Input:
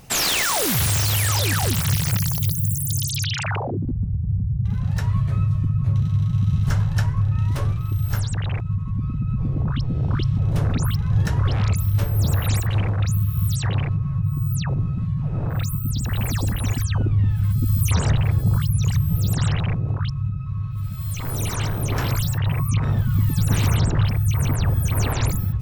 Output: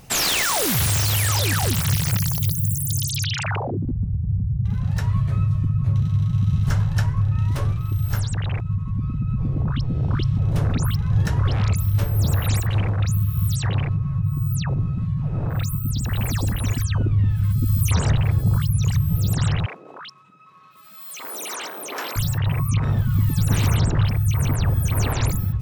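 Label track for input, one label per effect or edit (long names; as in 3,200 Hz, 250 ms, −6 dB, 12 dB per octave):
16.620000	17.910000	notch filter 800 Hz, Q 6.6
19.660000	22.160000	Bessel high-pass filter 450 Hz, order 6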